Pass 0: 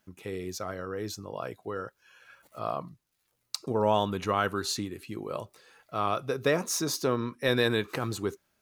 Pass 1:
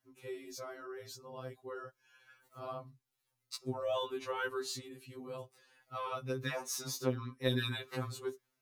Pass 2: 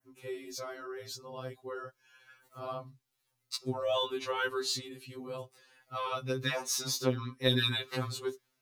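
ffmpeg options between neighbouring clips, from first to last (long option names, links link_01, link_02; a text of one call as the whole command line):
ffmpeg -i in.wav -af "bandreject=frequency=630:width=16,afftfilt=real='re*2.45*eq(mod(b,6),0)':imag='im*2.45*eq(mod(b,6),0)':win_size=2048:overlap=0.75,volume=-6dB" out.wav
ffmpeg -i in.wav -af "adynamicequalizer=threshold=0.00178:dfrequency=3900:dqfactor=0.98:tfrequency=3900:tqfactor=0.98:attack=5:release=100:ratio=0.375:range=3:mode=boostabove:tftype=bell,volume=3.5dB" out.wav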